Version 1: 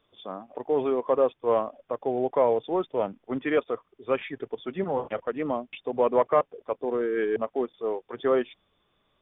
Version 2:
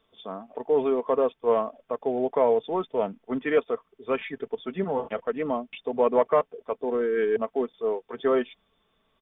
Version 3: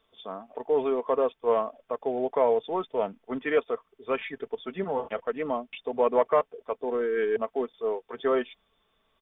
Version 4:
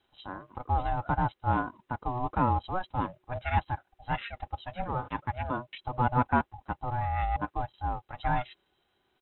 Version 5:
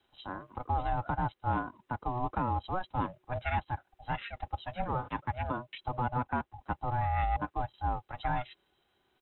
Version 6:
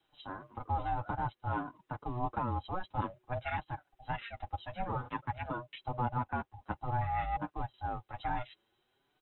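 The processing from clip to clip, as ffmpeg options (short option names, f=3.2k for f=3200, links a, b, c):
-af "aecho=1:1:4.5:0.43"
-af "equalizer=f=180:t=o:w=2.2:g=-5"
-af "aeval=exprs='val(0)*sin(2*PI*370*n/s)':c=same"
-filter_complex "[0:a]acrossover=split=130|2000[a][b][c];[a]volume=29dB,asoftclip=hard,volume=-29dB[d];[d][b][c]amix=inputs=3:normalize=0,alimiter=limit=-21dB:level=0:latency=1:release=306"
-af "flanger=delay=6.2:depth=4.1:regen=-3:speed=0.54:shape=triangular"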